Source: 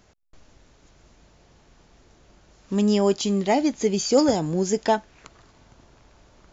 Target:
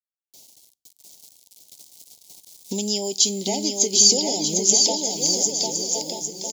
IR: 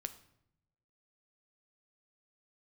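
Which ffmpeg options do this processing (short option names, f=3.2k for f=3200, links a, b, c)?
-filter_complex "[0:a]agate=range=-33dB:threshold=-44dB:ratio=3:detection=peak,highpass=210,acrusher=bits=10:mix=0:aa=0.000001,dynaudnorm=f=220:g=11:m=15dB,aecho=1:1:1062:0.0794,asplit=2[a][b];[1:a]atrim=start_sample=2205,afade=t=out:st=0.23:d=0.01,atrim=end_sample=10584[c];[b][c]afir=irnorm=-1:irlink=0,volume=-8.5dB[d];[a][d]amix=inputs=2:normalize=0,acompressor=threshold=-25dB:ratio=5,asuperstop=centerf=1400:order=20:qfactor=1.3,aecho=1:1:750|1238|1554|1760|1894:0.631|0.398|0.251|0.158|0.1,aexciter=amount=7.7:drive=4.5:freq=3.5k,volume=-2dB"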